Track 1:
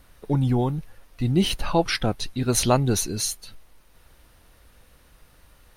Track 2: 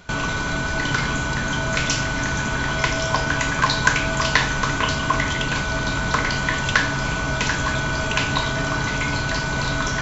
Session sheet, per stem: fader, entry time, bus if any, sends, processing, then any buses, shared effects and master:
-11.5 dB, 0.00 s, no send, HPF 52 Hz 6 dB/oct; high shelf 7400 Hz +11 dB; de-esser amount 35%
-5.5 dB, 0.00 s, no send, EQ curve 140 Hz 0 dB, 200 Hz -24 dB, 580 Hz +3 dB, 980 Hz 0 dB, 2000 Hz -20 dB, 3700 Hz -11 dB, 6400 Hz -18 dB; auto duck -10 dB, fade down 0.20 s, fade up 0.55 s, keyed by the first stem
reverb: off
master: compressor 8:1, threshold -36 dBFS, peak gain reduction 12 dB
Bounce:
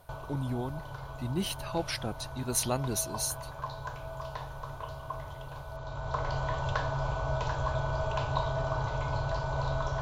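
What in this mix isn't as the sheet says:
stem 1: missing de-esser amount 35%; master: missing compressor 8:1, threshold -36 dBFS, peak gain reduction 12 dB

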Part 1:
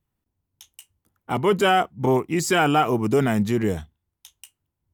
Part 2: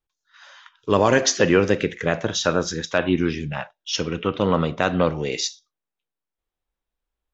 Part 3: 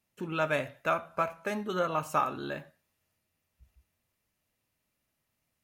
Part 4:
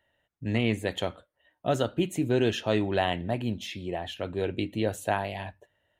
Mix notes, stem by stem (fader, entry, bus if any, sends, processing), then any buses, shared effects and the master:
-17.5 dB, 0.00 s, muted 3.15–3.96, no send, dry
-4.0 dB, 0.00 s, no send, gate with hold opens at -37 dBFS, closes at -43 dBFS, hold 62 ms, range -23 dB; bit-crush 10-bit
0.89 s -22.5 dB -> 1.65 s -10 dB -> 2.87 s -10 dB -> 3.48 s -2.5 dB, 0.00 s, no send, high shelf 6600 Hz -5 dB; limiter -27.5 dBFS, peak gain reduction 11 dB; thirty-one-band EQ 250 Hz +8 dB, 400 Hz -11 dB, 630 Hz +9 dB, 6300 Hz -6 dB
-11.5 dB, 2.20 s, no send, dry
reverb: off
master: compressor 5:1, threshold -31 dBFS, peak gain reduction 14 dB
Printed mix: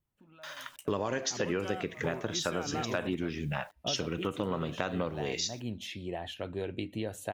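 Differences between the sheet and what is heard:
stem 1 -17.5 dB -> -6.0 dB; stem 2 -4.0 dB -> +3.5 dB; stem 4 -11.5 dB -> -3.5 dB

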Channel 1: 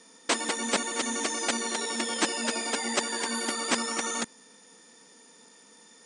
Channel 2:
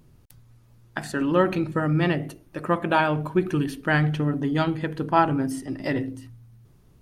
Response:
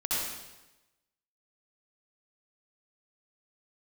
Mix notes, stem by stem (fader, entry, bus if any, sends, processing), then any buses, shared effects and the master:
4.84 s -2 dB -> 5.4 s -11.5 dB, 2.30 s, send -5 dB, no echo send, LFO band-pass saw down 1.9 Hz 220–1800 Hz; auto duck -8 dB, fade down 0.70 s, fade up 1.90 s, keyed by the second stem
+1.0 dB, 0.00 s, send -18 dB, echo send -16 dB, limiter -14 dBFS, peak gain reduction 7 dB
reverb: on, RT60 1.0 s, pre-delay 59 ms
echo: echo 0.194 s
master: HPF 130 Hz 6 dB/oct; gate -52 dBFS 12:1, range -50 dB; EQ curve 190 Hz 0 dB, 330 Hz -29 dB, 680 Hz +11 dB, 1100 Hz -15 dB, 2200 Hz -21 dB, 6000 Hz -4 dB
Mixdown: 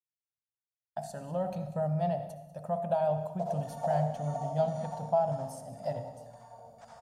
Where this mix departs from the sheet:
stem 1: entry 2.30 s -> 3.10 s; stem 2 +1.0 dB -> -6.0 dB

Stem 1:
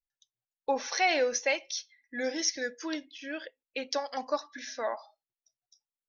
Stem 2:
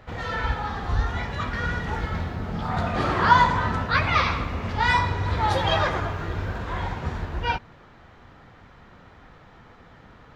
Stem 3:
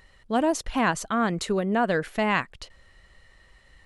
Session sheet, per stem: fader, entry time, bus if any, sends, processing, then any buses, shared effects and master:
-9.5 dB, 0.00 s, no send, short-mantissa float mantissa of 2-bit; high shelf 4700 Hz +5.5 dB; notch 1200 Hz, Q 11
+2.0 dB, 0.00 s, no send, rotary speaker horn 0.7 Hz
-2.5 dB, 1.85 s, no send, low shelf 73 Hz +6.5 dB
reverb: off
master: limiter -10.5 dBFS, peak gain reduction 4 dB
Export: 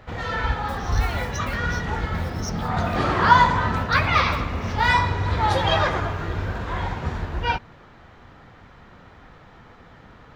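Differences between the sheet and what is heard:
stem 2: missing rotary speaker horn 0.7 Hz; stem 3: muted; master: missing limiter -10.5 dBFS, peak gain reduction 4 dB

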